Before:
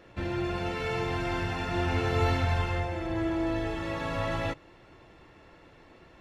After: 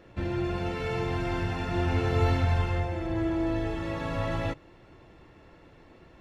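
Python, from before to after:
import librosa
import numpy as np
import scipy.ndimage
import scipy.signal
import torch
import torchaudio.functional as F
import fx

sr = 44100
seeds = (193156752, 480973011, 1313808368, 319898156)

y = fx.low_shelf(x, sr, hz=500.0, db=5.5)
y = y * librosa.db_to_amplitude(-2.5)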